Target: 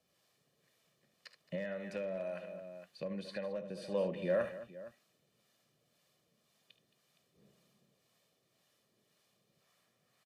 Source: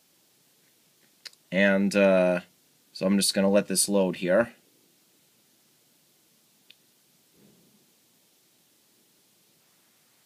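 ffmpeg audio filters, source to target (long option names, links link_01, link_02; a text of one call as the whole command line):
ffmpeg -i in.wav -filter_complex "[0:a]aecho=1:1:1.7:0.54,acrossover=split=220|3900[link_01][link_02][link_03];[link_01]acompressor=threshold=-36dB:ratio=4[link_04];[link_02]acompressor=threshold=-20dB:ratio=4[link_05];[link_03]acompressor=threshold=-48dB:ratio=4[link_06];[link_04][link_05][link_06]amix=inputs=3:normalize=0,highshelf=frequency=4600:gain=-11.5,aecho=1:1:51|74|220|465:0.119|0.266|0.178|0.141,acrossover=split=600[link_07][link_08];[link_07]aeval=exprs='val(0)*(1-0.5/2+0.5/2*cos(2*PI*1.9*n/s))':channel_layout=same[link_09];[link_08]aeval=exprs='val(0)*(1-0.5/2-0.5/2*cos(2*PI*1.9*n/s))':channel_layout=same[link_10];[link_09][link_10]amix=inputs=2:normalize=0,volume=17.5dB,asoftclip=hard,volume=-17.5dB,asettb=1/sr,asplit=3[link_11][link_12][link_13];[link_11]atrim=end=1.554[link_14];[link_12]atrim=start=1.55:end=3.82,asetpts=PTS-STARTPTS,afade=type=in:duration=0.004:curve=qsin,afade=type=out:start_time=2.266:duration=0.004:curve=qsin,acompressor=threshold=-34dB:ratio=2.5[link_15];[link_13]atrim=start=3.816[link_16];[link_14][link_15]acrossfade=duration=0.004:curve1=hsin:curve2=qsin[link_17];[link_17][link_16]acrossfade=duration=0.004:curve1=qsin:curve2=hsin,volume=-6.5dB" out.wav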